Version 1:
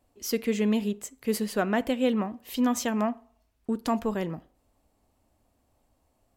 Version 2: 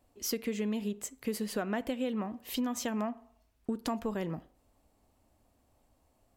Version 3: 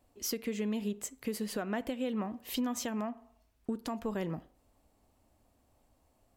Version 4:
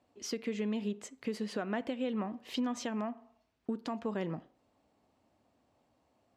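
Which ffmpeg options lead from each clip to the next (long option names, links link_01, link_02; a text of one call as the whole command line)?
ffmpeg -i in.wav -af "acompressor=threshold=-30dB:ratio=6" out.wav
ffmpeg -i in.wav -af "alimiter=limit=-24dB:level=0:latency=1:release=288" out.wav
ffmpeg -i in.wav -af "highpass=130,lowpass=5000" out.wav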